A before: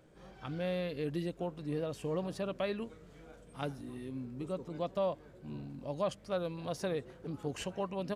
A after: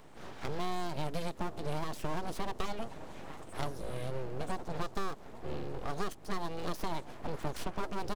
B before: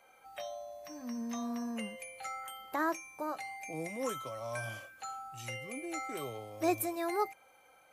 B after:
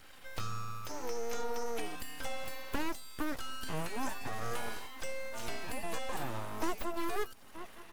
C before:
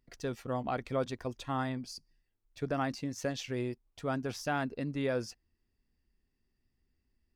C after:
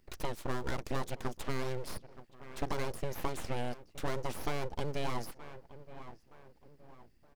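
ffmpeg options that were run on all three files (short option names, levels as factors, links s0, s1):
-filter_complex "[0:a]asplit=2[s0][s1];[s1]adelay=920,lowpass=f=1000:p=1,volume=0.0794,asplit=2[s2][s3];[s3]adelay=920,lowpass=f=1000:p=1,volume=0.43,asplit=2[s4][s5];[s5]adelay=920,lowpass=f=1000:p=1,volume=0.43[s6];[s0][s2][s4][s6]amix=inputs=4:normalize=0,aeval=exprs='abs(val(0))':c=same,acrossover=split=1200|4400[s7][s8][s9];[s7]acompressor=threshold=0.01:ratio=4[s10];[s8]acompressor=threshold=0.00126:ratio=4[s11];[s9]acompressor=threshold=0.00112:ratio=4[s12];[s10][s11][s12]amix=inputs=3:normalize=0,volume=2.99"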